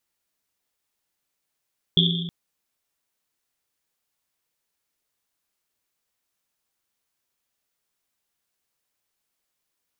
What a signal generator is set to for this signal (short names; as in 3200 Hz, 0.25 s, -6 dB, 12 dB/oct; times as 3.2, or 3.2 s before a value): Risset drum length 0.32 s, pitch 170 Hz, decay 1.66 s, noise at 3400 Hz, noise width 370 Hz, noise 45%